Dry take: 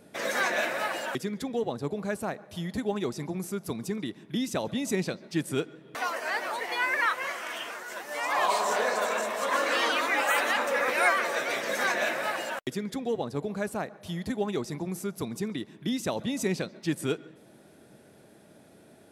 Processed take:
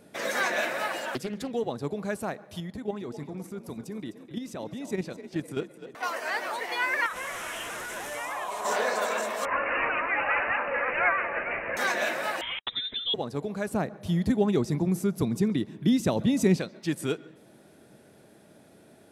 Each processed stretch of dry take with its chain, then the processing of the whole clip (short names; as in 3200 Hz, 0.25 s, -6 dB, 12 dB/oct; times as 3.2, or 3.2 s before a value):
1–1.51 notches 50/100/150/200 Hz + Doppler distortion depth 0.39 ms
2.6–6.03 high shelf 2300 Hz -7 dB + level quantiser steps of 9 dB + frequency-shifting echo 0.255 s, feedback 49%, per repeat +46 Hz, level -13 dB
7.06–8.65 delta modulation 64 kbps, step -30 dBFS + bell 4500 Hz -11 dB 0.43 oct + compressor, threshold -30 dBFS
9.45–11.77 low shelf 370 Hz -9.5 dB + careless resampling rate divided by 8×, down none, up filtered
12.41–13.14 wrapped overs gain 20 dB + inverted band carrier 3800 Hz
13.71–16.58 HPF 41 Hz + low shelf 370 Hz +11 dB
whole clip: dry